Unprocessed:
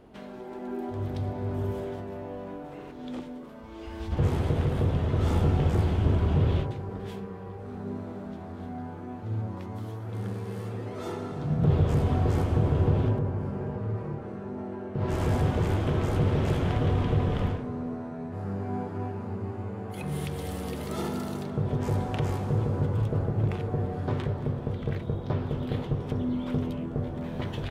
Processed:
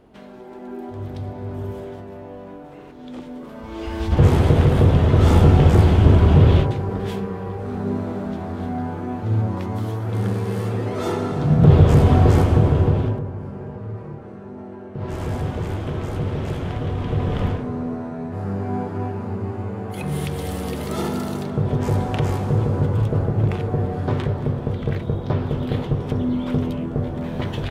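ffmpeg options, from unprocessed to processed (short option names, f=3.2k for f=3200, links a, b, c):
-af "volume=18dB,afade=t=in:st=3.14:d=0.64:silence=0.316228,afade=t=out:st=12.28:d=0.98:silence=0.281838,afade=t=in:st=16.97:d=0.64:silence=0.446684"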